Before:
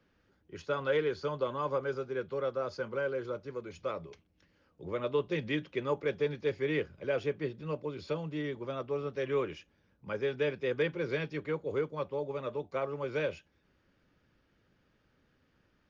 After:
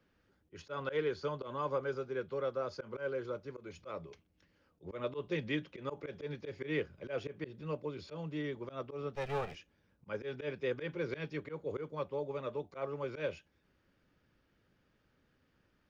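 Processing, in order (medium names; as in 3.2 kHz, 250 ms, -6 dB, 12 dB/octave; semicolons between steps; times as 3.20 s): 9.15–9.55 s: comb filter that takes the minimum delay 1.6 ms; slow attack 101 ms; trim -2.5 dB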